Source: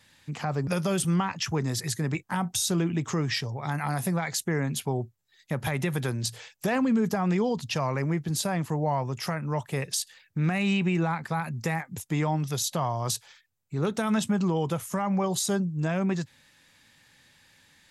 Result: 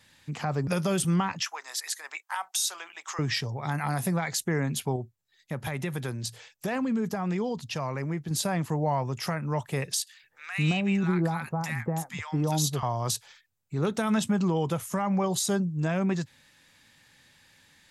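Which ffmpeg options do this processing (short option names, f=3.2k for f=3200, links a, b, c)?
-filter_complex "[0:a]asettb=1/sr,asplit=3[a][b][c];[a]atrim=end=1.434[d];[b]atrim=start=1.43:end=3.19,asetpts=PTS-STARTPTS,afade=t=in:d=0.004:c=qsin,afade=t=out:st=1.756:d=0.004:c=qsin,highpass=f=790:w=0.5412,highpass=f=790:w=1.3066[e];[c]atrim=start=3.186[f];[d][e]acrossfade=d=0.004:c1=hsin:c2=qsin[g];[g][f]acrossfade=d=0.004:c1=qsin:c2=hsin,asettb=1/sr,asplit=3[h][i][j];[h]atrim=end=10.014[k];[i]atrim=start=10.01:end=12.83,asetpts=PTS-STARTPTS,afade=t=in:d=0.004:c=qsin,afade=t=out:st=2.816:d=0.004:c=qsin,acrossover=split=1100[l][m];[l]adelay=220[n];[n][m]amix=inputs=2:normalize=0,atrim=end_sample=124362[o];[j]atrim=start=12.826[p];[k][o]acrossfade=d=0.004:c1=hsin:c2=qsin[q];[q][p]acrossfade=d=0.004:c1=qsin:c2=hsin,asplit=3[r][s][t];[r]atrim=end=4.962[u];[s]atrim=start=4.958:end=8.312,asetpts=PTS-STARTPTS,volume=-4dB[v];[t]atrim=start=8.308[w];[u][v]acrossfade=d=0.004:c1=hsin:c2=hsin[x];[x][w]acrossfade=d=0.004:c1=hsin:c2=hsin"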